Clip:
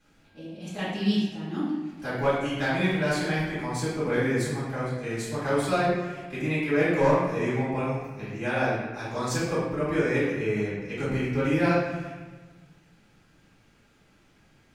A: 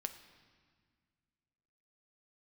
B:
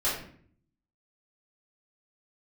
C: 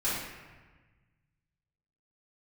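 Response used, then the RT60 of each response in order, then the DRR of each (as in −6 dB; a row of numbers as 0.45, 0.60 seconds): C; 1.8, 0.55, 1.3 seconds; 7.5, −10.5, −11.5 decibels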